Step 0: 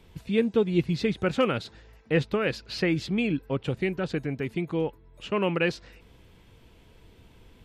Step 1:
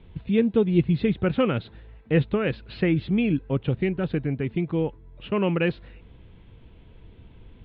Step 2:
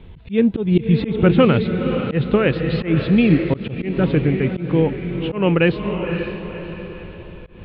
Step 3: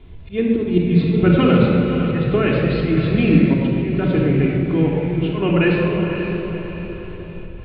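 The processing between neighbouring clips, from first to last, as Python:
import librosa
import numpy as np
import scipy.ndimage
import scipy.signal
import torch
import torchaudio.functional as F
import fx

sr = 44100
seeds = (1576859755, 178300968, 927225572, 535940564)

y1 = scipy.signal.sosfilt(scipy.signal.butter(8, 3800.0, 'lowpass', fs=sr, output='sos'), x)
y1 = fx.low_shelf(y1, sr, hz=310.0, db=9.0)
y1 = F.gain(torch.from_numpy(y1), -1.5).numpy()
y2 = fx.echo_diffused(y1, sr, ms=536, feedback_pct=46, wet_db=-7.5)
y2 = fx.auto_swell(y2, sr, attack_ms=159.0)
y2 = F.gain(torch.from_numpy(y2), 8.0).numpy()
y3 = fx.room_shoebox(y2, sr, seeds[0], volume_m3=3300.0, walls='mixed', distance_m=3.2)
y3 = F.gain(torch.from_numpy(y3), -4.5).numpy()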